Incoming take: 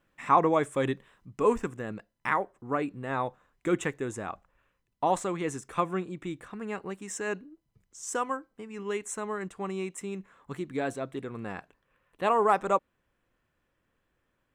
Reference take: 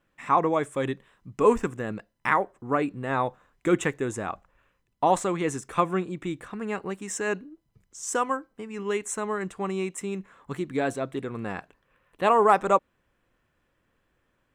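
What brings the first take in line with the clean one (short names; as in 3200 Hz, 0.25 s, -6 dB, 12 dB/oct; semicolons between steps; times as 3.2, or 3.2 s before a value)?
interpolate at 9.49, 12 ms; gain 0 dB, from 1.25 s +4.5 dB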